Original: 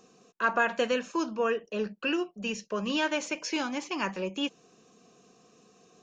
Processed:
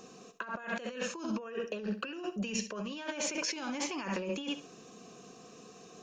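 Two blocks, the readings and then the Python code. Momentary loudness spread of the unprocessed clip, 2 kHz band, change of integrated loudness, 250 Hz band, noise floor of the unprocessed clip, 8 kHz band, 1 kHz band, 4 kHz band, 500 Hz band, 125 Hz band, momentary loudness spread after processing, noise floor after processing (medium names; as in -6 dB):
7 LU, -8.5 dB, -6.5 dB, -4.5 dB, -63 dBFS, +3.0 dB, -10.0 dB, -5.0 dB, -8.0 dB, no reading, 18 LU, -54 dBFS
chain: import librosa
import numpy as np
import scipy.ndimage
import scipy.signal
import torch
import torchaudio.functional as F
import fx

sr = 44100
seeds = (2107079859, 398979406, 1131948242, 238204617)

y = fx.echo_feedback(x, sr, ms=66, feedback_pct=22, wet_db=-12.5)
y = fx.over_compress(y, sr, threshold_db=-38.0, ratio=-1.0)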